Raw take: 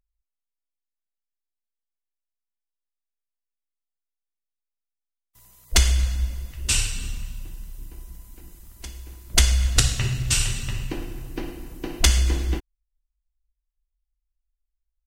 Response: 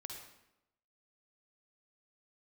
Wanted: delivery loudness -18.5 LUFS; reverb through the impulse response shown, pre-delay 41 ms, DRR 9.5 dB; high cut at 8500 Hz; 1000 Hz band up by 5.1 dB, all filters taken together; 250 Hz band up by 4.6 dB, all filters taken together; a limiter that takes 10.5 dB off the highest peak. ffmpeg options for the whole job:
-filter_complex "[0:a]lowpass=8.5k,equalizer=f=250:t=o:g=6,equalizer=f=1k:t=o:g=6.5,alimiter=limit=-14dB:level=0:latency=1,asplit=2[a][b];[1:a]atrim=start_sample=2205,adelay=41[c];[b][c]afir=irnorm=-1:irlink=0,volume=-6dB[d];[a][d]amix=inputs=2:normalize=0,volume=8.5dB"

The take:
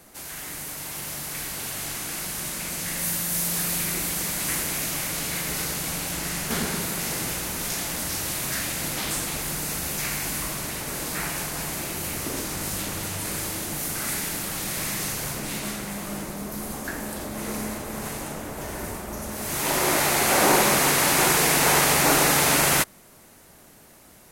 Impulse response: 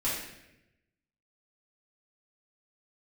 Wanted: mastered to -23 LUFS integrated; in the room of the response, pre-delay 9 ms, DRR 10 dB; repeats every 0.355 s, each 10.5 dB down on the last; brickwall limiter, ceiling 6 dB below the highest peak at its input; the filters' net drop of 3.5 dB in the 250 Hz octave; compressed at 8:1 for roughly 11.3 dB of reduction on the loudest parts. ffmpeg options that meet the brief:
-filter_complex "[0:a]equalizer=f=250:t=o:g=-5,acompressor=threshold=-28dB:ratio=8,alimiter=limit=-23.5dB:level=0:latency=1,aecho=1:1:355|710|1065:0.299|0.0896|0.0269,asplit=2[a][b];[1:a]atrim=start_sample=2205,adelay=9[c];[b][c]afir=irnorm=-1:irlink=0,volume=-17.5dB[d];[a][d]amix=inputs=2:normalize=0,volume=8dB"

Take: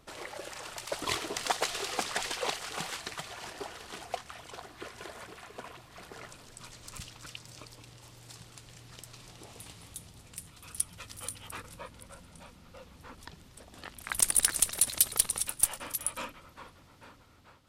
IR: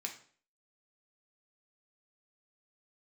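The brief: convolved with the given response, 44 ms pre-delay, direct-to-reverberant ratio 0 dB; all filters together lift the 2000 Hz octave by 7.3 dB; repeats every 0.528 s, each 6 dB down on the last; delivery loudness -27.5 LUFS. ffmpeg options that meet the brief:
-filter_complex "[0:a]equalizer=f=2k:t=o:g=9,aecho=1:1:528|1056|1584|2112|2640|3168:0.501|0.251|0.125|0.0626|0.0313|0.0157,asplit=2[a][b];[1:a]atrim=start_sample=2205,adelay=44[c];[b][c]afir=irnorm=-1:irlink=0,volume=0.5dB[d];[a][d]amix=inputs=2:normalize=0"

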